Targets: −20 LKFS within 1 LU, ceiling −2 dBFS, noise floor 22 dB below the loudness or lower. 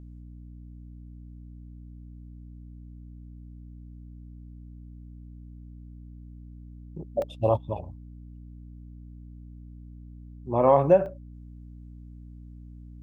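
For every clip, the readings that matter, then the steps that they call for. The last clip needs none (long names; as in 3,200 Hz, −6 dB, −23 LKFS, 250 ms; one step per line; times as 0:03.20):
number of dropouts 2; longest dropout 2.0 ms; mains hum 60 Hz; hum harmonics up to 300 Hz; level of the hum −42 dBFS; integrated loudness −24.5 LKFS; sample peak −7.5 dBFS; target loudness −20.0 LKFS
→ repair the gap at 0:07.22/0:11.06, 2 ms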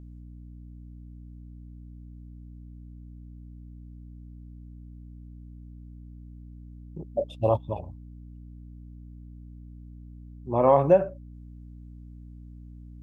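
number of dropouts 0; mains hum 60 Hz; hum harmonics up to 300 Hz; level of the hum −42 dBFS
→ hum removal 60 Hz, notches 5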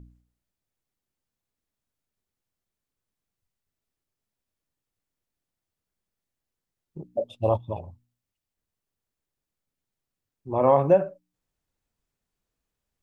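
mains hum none found; integrated loudness −24.0 LKFS; sample peak −7.5 dBFS; target loudness −20.0 LKFS
→ level +4 dB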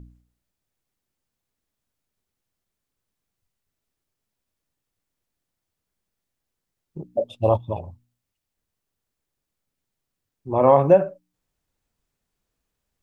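integrated loudness −20.0 LKFS; sample peak −3.5 dBFS; background noise floor −83 dBFS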